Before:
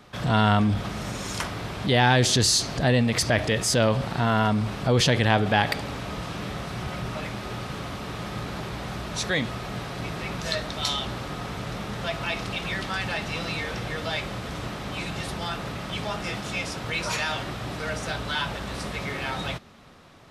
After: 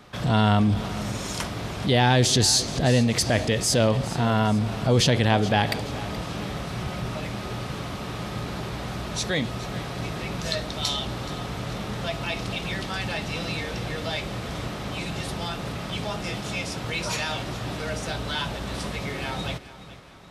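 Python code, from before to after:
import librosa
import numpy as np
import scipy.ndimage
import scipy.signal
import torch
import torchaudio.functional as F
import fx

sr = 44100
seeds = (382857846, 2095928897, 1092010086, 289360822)

p1 = fx.dynamic_eq(x, sr, hz=1500.0, q=0.87, threshold_db=-39.0, ratio=4.0, max_db=-5)
p2 = p1 + fx.echo_feedback(p1, sr, ms=425, feedback_pct=45, wet_db=-16.0, dry=0)
y = p2 * librosa.db_to_amplitude(1.5)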